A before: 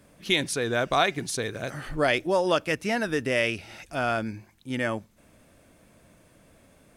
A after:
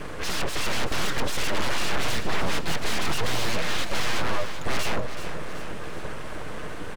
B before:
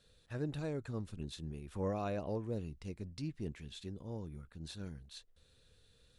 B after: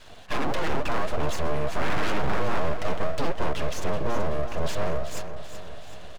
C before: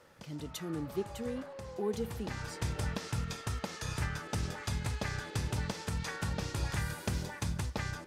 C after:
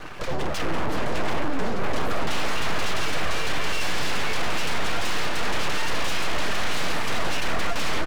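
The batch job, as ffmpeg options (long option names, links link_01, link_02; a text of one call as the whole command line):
ffmpeg -i in.wav -filter_complex "[0:a]afreqshift=-410,highpass=57,acrossover=split=3400[link_01][link_02];[link_02]acompressor=threshold=-52dB:ratio=4:attack=1:release=60[link_03];[link_01][link_03]amix=inputs=2:normalize=0,equalizer=frequency=1400:width_type=o:width=0.32:gain=9,aecho=1:1:6.6:0.54,acompressor=threshold=-29dB:ratio=8,aeval=exprs='0.119*sin(PI/2*8.91*val(0)/0.119)':channel_layout=same,aemphasis=mode=reproduction:type=75fm,aeval=exprs='abs(val(0))':channel_layout=same,asplit=2[link_04][link_05];[link_05]aecho=0:1:378|756|1134|1512|1890|2268:0.299|0.158|0.0839|0.0444|0.0236|0.0125[link_06];[link_04][link_06]amix=inputs=2:normalize=0" out.wav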